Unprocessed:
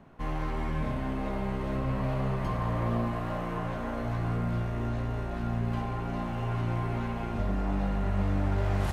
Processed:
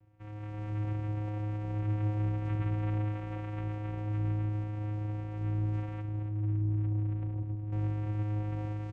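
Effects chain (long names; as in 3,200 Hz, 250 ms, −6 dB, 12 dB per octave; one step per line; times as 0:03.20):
0:06.01–0:07.72: spectral envelope exaggerated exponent 2
automatic gain control gain up to 6.5 dB
single-tap delay 272 ms −9.5 dB
channel vocoder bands 4, square 105 Hz
level −6.5 dB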